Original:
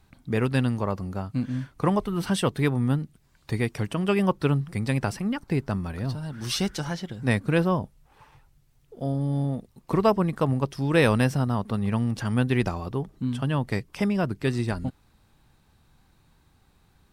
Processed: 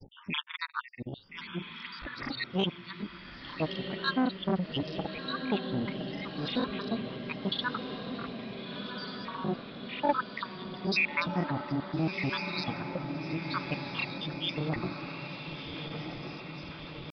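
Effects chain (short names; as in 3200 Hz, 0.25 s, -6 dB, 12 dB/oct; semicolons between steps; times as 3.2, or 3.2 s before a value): random spectral dropouts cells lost 77%; tilt +1.5 dB/oct; in parallel at -2.5 dB: limiter -24 dBFS, peak gain reduction 9 dB; on the sum: upward compressor, threshold -33 dBFS; grains, spray 32 ms, pitch spread up and down by 0 st; pitch shift +5 st; on a send: diffused feedback echo 1.368 s, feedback 63%, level -7 dB; on the sum: downsampling 11025 Hz; core saturation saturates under 640 Hz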